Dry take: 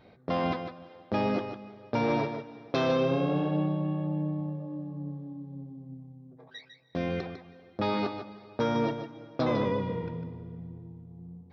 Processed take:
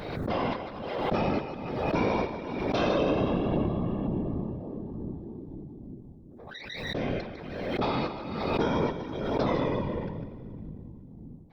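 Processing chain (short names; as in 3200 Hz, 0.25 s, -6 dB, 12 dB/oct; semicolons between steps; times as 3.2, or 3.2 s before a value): whisperiser; backwards sustainer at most 36 dB/s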